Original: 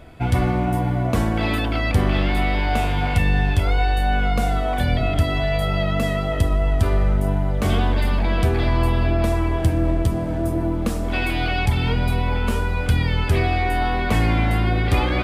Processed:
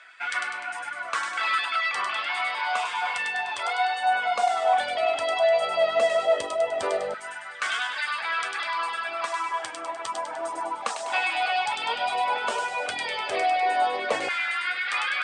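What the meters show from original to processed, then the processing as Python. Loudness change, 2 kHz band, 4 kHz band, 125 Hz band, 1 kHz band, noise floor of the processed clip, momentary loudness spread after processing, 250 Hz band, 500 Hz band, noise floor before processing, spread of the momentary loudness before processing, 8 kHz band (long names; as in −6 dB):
−5.0 dB, +0.5 dB, −0.5 dB, below −40 dB, +1.0 dB, −36 dBFS, 9 LU, −25.0 dB, −1.0 dB, −23 dBFS, 3 LU, 0.0 dB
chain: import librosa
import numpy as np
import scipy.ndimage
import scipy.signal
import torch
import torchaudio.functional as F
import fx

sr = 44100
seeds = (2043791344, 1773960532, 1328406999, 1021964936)

y = fx.dereverb_blind(x, sr, rt60_s=1.1)
y = scipy.signal.sosfilt(scipy.signal.cheby1(5, 1.0, 8900.0, 'lowpass', fs=sr, output='sos'), y)
y = fx.low_shelf(y, sr, hz=350.0, db=-7.0)
y = fx.rider(y, sr, range_db=10, speed_s=0.5)
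y = fx.filter_lfo_highpass(y, sr, shape='saw_down', hz=0.14, low_hz=530.0, high_hz=1600.0, q=3.1)
y = fx.echo_wet_highpass(y, sr, ms=100, feedback_pct=52, hz=2400.0, wet_db=-3.0)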